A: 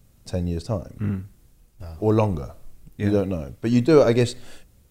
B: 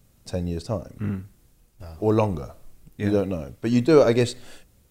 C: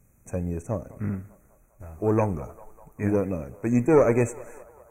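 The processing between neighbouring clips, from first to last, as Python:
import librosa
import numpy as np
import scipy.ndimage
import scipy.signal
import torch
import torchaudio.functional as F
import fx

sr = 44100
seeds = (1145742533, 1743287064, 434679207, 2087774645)

y1 = fx.low_shelf(x, sr, hz=150.0, db=-4.5)
y2 = fx.tube_stage(y1, sr, drive_db=8.0, bias=0.45)
y2 = fx.brickwall_bandstop(y2, sr, low_hz=2600.0, high_hz=5800.0)
y2 = fx.echo_banded(y2, sr, ms=199, feedback_pct=70, hz=900.0, wet_db=-18)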